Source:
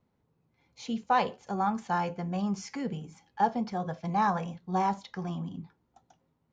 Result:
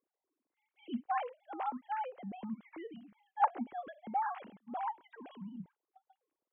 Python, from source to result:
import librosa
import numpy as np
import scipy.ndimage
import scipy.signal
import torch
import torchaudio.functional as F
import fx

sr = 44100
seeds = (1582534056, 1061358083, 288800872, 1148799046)

y = fx.sine_speech(x, sr)
y = y * librosa.db_to_amplitude(-8.0)